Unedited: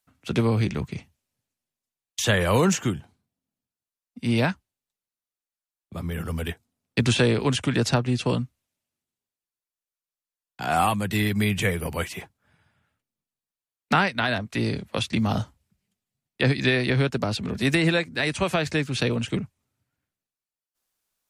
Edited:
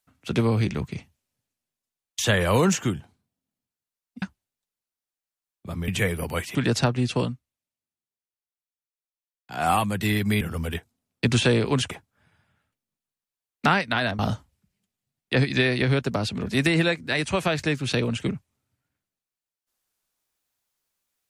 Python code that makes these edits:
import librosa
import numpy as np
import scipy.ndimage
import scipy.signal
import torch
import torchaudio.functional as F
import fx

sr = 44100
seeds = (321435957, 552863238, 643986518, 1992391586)

y = fx.edit(x, sr, fx.cut(start_s=4.22, length_s=0.27),
    fx.swap(start_s=6.15, length_s=1.5, other_s=11.51, other_length_s=0.67),
    fx.fade_down_up(start_s=8.28, length_s=2.52, db=-9.0, fade_s=0.22),
    fx.cut(start_s=14.46, length_s=0.81), tone=tone)